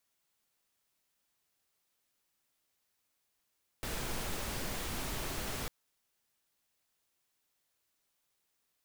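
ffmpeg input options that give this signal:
-f lavfi -i "anoisesrc=c=pink:a=0.0684:d=1.85:r=44100:seed=1"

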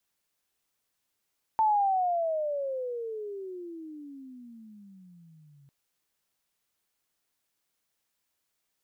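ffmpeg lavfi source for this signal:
-f lavfi -i "aevalsrc='pow(10,(-20-34.5*t/4.1)/20)*sin(2*PI*891*4.1/(-32.5*log(2)/12)*(exp(-32.5*log(2)/12*t/4.1)-1))':d=4.1:s=44100"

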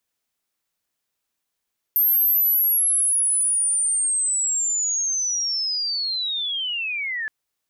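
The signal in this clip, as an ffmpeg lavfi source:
-f lavfi -i "aevalsrc='pow(10,(-15-9.5*t/5.32)/20)*sin(2*PI*(13000*t-11300*t*t/(2*5.32)))':d=5.32:s=44100"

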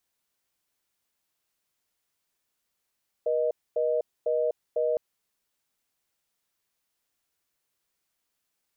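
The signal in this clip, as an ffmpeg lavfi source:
-f lavfi -i "aevalsrc='0.0531*(sin(2*PI*480*t)+sin(2*PI*620*t))*clip(min(mod(t,0.5),0.25-mod(t,0.5))/0.005,0,1)':d=1.71:s=44100"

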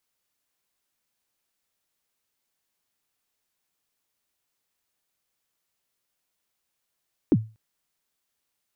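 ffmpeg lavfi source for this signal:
-f lavfi -i "aevalsrc='0.282*pow(10,-3*t/0.3)*sin(2*PI*(370*0.047/log(110/370)*(exp(log(110/370)*min(t,0.047)/0.047)-1)+110*max(t-0.047,0)))':d=0.24:s=44100"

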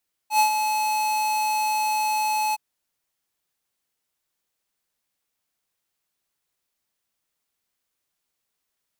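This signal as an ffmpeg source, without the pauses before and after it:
-f lavfi -i "aevalsrc='0.15*(2*lt(mod(858*t,1),0.5)-1)':d=2.266:s=44100,afade=t=in:d=0.095,afade=t=out:st=0.095:d=0.102:silence=0.447,afade=t=out:st=2.24:d=0.026"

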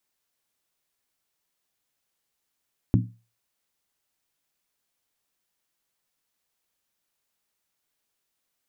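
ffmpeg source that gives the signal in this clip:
-f lavfi -i "aevalsrc='0.188*pow(10,-3*t/0.33)*sin(2*PI*115*t)+0.133*pow(10,-3*t/0.261)*sin(2*PI*183.3*t)+0.0944*pow(10,-3*t/0.226)*sin(2*PI*245.6*t)+0.0668*pow(10,-3*t/0.218)*sin(2*PI*264*t)+0.0473*pow(10,-3*t/0.203)*sin(2*PI*305.1*t)':d=0.63:s=44100"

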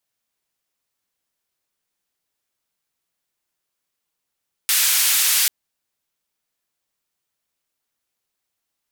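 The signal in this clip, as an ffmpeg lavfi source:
-f lavfi -i "anoisesrc=c=white:d=0.79:r=44100:seed=1,highpass=f=1800,lowpass=f=16000,volume=-10.7dB"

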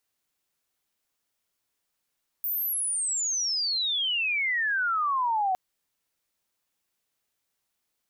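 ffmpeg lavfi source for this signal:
-f lavfi -i "aevalsrc='pow(10,(-26+3.5*t/3.11)/20)*sin(2*PI*15000*3.11/log(730/15000)*(exp(log(730/15000)*t/3.11)-1))':d=3.11:s=44100"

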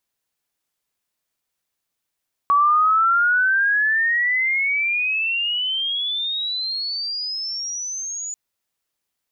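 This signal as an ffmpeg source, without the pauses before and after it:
-f lavfi -i "aevalsrc='pow(10,(-12.5-14*t/5.84)/20)*sin(2*PI*1130*5.84/(31.5*log(2)/12)*(exp(31.5*log(2)/12*t/5.84)-1))':d=5.84:s=44100"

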